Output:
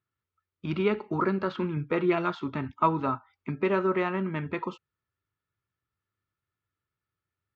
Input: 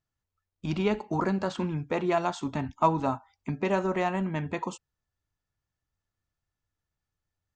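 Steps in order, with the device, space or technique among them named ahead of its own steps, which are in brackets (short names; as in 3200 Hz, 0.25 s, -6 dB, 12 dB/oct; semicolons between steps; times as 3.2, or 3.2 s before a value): 1.76–2.35 comb 6.3 ms, depth 52%; guitar cabinet (speaker cabinet 86–4100 Hz, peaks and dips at 110 Hz +4 dB, 380 Hz +6 dB, 740 Hz -8 dB, 1300 Hz +9 dB, 2200 Hz +4 dB); gain -1.5 dB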